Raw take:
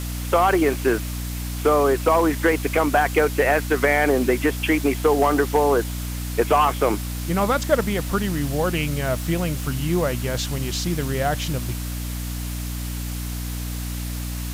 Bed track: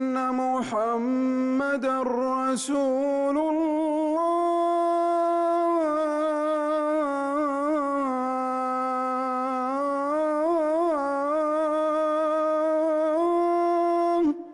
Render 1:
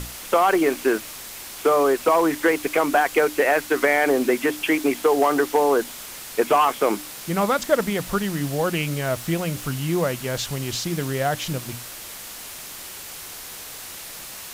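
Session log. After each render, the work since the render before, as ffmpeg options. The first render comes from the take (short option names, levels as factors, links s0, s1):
-af "bandreject=f=60:t=h:w=6,bandreject=f=120:t=h:w=6,bandreject=f=180:t=h:w=6,bandreject=f=240:t=h:w=6,bandreject=f=300:t=h:w=6"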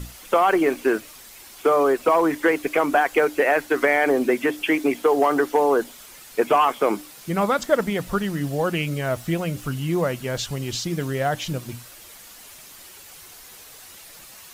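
-af "afftdn=nr=9:nf=-37"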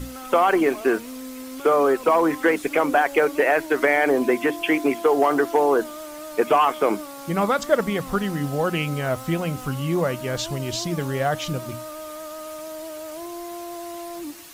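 -filter_complex "[1:a]volume=0.251[s0];[0:a][s0]amix=inputs=2:normalize=0"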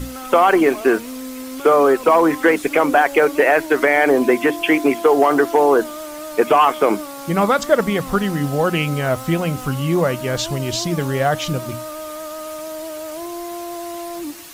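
-af "volume=1.78,alimiter=limit=0.708:level=0:latency=1"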